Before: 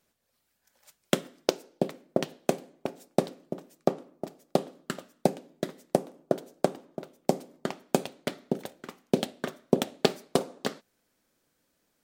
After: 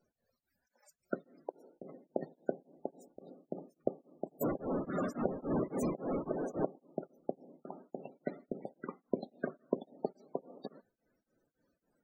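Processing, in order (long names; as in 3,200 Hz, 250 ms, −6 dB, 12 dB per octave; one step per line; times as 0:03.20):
0:04.41–0:06.65: converter with a step at zero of −20 dBFS
notch filter 3,100 Hz, Q 7.2
downward compressor 12 to 1, threshold −31 dBFS, peak gain reduction 17 dB
spectral peaks only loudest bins 32
tremolo along a rectified sine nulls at 3.6 Hz
level +2 dB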